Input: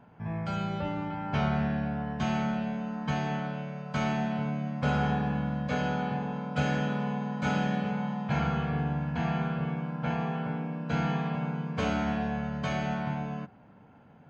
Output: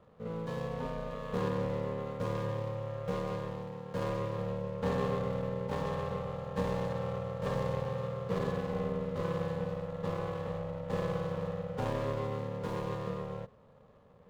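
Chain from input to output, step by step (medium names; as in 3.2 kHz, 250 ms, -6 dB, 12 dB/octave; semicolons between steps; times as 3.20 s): median filter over 25 samples; ring modulator 330 Hz; trim -1 dB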